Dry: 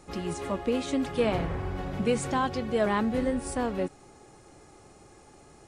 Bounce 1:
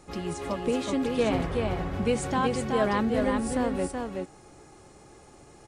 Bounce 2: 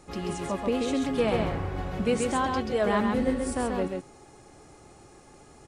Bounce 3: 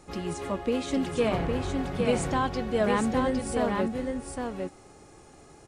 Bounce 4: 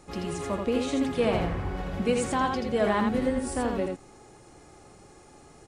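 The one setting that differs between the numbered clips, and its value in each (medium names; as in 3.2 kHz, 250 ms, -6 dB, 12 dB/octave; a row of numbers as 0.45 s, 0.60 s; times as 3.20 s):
delay, time: 375 ms, 133 ms, 809 ms, 82 ms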